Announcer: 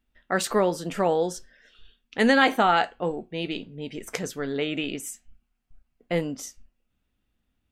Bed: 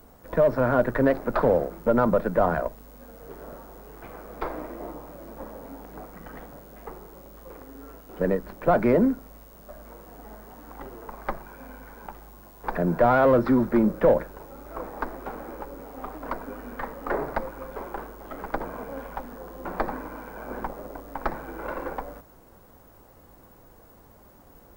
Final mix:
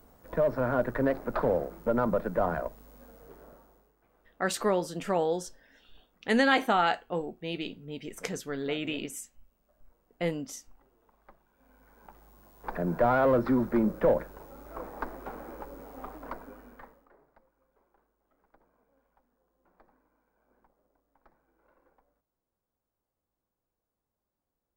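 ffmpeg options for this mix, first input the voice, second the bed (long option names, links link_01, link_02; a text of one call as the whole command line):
ffmpeg -i stem1.wav -i stem2.wav -filter_complex "[0:a]adelay=4100,volume=-4.5dB[link_01];[1:a]volume=15.5dB,afade=type=out:start_time=3:duration=0.94:silence=0.0944061,afade=type=in:start_time=11.53:duration=1.5:silence=0.0841395,afade=type=out:start_time=15.99:duration=1.1:silence=0.0316228[link_02];[link_01][link_02]amix=inputs=2:normalize=0" out.wav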